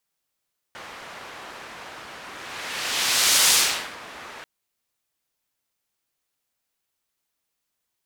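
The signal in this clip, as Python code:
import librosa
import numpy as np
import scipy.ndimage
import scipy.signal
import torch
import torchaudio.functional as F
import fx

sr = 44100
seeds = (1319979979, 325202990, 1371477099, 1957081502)

y = fx.whoosh(sr, seeds[0], length_s=3.69, peak_s=2.77, rise_s=1.37, fall_s=0.48, ends_hz=1400.0, peak_hz=6400.0, q=0.7, swell_db=23.5)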